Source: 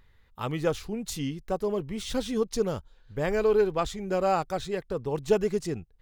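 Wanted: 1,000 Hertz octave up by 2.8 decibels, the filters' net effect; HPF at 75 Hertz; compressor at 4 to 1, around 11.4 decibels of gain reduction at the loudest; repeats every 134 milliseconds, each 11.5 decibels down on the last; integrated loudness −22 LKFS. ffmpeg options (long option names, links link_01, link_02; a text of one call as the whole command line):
ffmpeg -i in.wav -af "highpass=75,equalizer=frequency=1000:width_type=o:gain=4,acompressor=threshold=-31dB:ratio=4,aecho=1:1:134|268|402:0.266|0.0718|0.0194,volume=13dB" out.wav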